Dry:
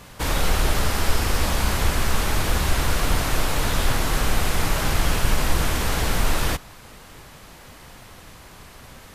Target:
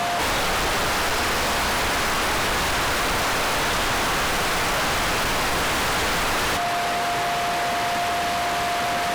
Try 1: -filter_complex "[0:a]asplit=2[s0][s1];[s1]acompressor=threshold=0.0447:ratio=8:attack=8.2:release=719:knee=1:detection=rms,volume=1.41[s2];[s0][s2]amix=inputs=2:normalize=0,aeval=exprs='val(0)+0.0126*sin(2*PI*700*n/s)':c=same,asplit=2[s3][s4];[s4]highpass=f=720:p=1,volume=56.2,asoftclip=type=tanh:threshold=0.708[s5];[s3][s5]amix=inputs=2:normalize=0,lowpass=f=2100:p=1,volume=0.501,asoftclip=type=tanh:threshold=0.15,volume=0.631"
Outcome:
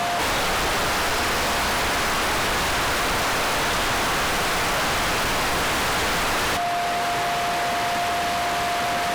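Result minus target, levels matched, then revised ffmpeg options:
compression: peak gain reduction +7 dB
-filter_complex "[0:a]asplit=2[s0][s1];[s1]acompressor=threshold=0.112:ratio=8:attack=8.2:release=719:knee=1:detection=rms,volume=1.41[s2];[s0][s2]amix=inputs=2:normalize=0,aeval=exprs='val(0)+0.0126*sin(2*PI*700*n/s)':c=same,asplit=2[s3][s4];[s4]highpass=f=720:p=1,volume=56.2,asoftclip=type=tanh:threshold=0.708[s5];[s3][s5]amix=inputs=2:normalize=0,lowpass=f=2100:p=1,volume=0.501,asoftclip=type=tanh:threshold=0.15,volume=0.631"

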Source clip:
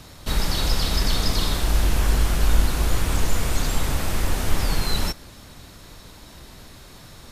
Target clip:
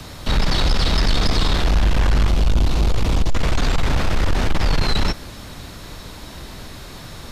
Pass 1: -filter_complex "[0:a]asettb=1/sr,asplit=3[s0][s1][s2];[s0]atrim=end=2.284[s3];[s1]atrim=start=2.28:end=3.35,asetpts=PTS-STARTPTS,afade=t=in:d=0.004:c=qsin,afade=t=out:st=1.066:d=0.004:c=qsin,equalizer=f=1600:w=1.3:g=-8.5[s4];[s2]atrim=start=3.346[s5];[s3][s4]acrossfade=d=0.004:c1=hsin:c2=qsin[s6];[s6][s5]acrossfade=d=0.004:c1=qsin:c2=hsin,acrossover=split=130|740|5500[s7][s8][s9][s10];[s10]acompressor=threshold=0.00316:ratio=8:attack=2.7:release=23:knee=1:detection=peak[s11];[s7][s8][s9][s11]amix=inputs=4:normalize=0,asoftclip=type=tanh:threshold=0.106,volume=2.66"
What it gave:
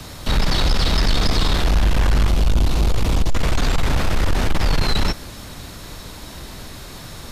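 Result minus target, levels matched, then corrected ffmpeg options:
compression: peak gain reduction -6.5 dB
-filter_complex "[0:a]asettb=1/sr,asplit=3[s0][s1][s2];[s0]atrim=end=2.284[s3];[s1]atrim=start=2.28:end=3.35,asetpts=PTS-STARTPTS,afade=t=in:d=0.004:c=qsin,afade=t=out:st=1.066:d=0.004:c=qsin,equalizer=f=1600:w=1.3:g=-8.5[s4];[s2]atrim=start=3.346[s5];[s3][s4]acrossfade=d=0.004:c1=hsin:c2=qsin[s6];[s6][s5]acrossfade=d=0.004:c1=qsin:c2=hsin,acrossover=split=130|740|5500[s7][s8][s9][s10];[s10]acompressor=threshold=0.00133:ratio=8:attack=2.7:release=23:knee=1:detection=peak[s11];[s7][s8][s9][s11]amix=inputs=4:normalize=0,asoftclip=type=tanh:threshold=0.106,volume=2.66"

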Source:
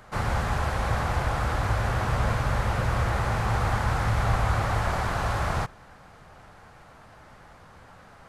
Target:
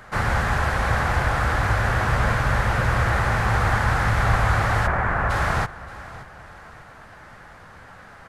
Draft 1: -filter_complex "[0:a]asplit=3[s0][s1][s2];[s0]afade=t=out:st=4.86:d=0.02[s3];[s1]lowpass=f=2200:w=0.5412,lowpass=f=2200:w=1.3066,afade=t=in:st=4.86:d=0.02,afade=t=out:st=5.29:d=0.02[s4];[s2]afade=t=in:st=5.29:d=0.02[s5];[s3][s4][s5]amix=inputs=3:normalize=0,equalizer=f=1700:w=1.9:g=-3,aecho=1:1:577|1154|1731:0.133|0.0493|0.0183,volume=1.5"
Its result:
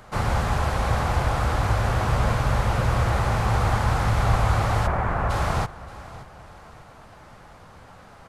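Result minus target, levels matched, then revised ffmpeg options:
2 kHz band -6.0 dB
-filter_complex "[0:a]asplit=3[s0][s1][s2];[s0]afade=t=out:st=4.86:d=0.02[s3];[s1]lowpass=f=2200:w=0.5412,lowpass=f=2200:w=1.3066,afade=t=in:st=4.86:d=0.02,afade=t=out:st=5.29:d=0.02[s4];[s2]afade=t=in:st=5.29:d=0.02[s5];[s3][s4][s5]amix=inputs=3:normalize=0,equalizer=f=1700:w=1.9:g=6.5,aecho=1:1:577|1154|1731:0.133|0.0493|0.0183,volume=1.5"

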